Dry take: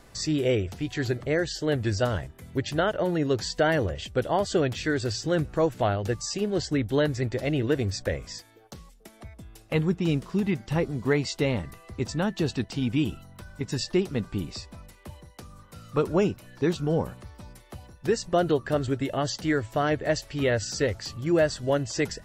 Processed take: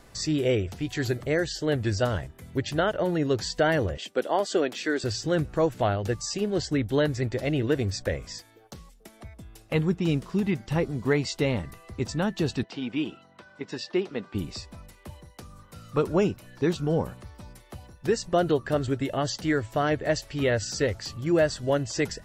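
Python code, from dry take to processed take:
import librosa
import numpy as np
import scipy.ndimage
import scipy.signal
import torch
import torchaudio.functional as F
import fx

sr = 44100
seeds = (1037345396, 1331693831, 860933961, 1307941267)

y = fx.high_shelf(x, sr, hz=9400.0, db=11.5, at=(0.89, 1.47))
y = fx.highpass(y, sr, hz=240.0, slope=24, at=(3.97, 5.04))
y = fx.bandpass_edges(y, sr, low_hz=290.0, high_hz=4000.0, at=(12.63, 14.35))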